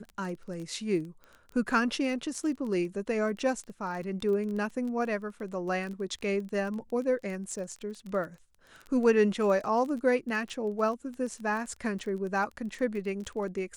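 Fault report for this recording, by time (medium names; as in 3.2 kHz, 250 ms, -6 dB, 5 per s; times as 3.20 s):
crackle 20 per s -36 dBFS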